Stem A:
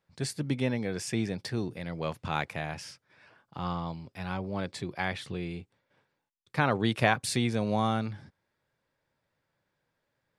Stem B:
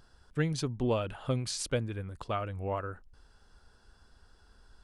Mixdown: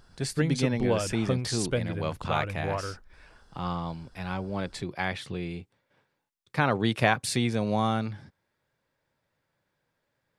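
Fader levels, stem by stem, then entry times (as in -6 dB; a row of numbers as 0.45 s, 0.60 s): +1.5 dB, +2.5 dB; 0.00 s, 0.00 s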